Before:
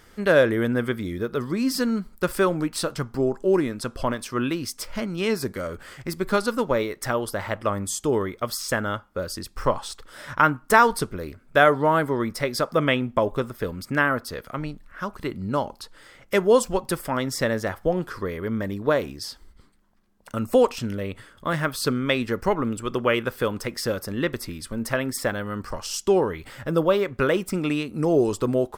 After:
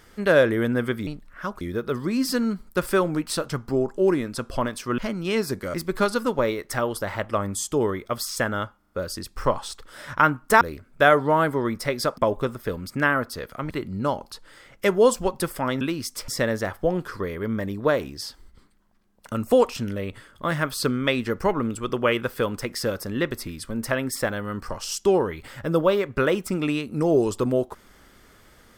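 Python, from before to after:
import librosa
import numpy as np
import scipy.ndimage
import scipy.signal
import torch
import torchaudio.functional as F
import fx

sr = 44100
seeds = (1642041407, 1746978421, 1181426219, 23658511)

y = fx.edit(x, sr, fx.move(start_s=4.44, length_s=0.47, to_s=17.3),
    fx.cut(start_s=5.67, length_s=0.39),
    fx.stutter(start_s=9.1, slice_s=0.04, count=4),
    fx.cut(start_s=10.81, length_s=0.35),
    fx.cut(start_s=12.73, length_s=0.4),
    fx.move(start_s=14.65, length_s=0.54, to_s=1.07), tone=tone)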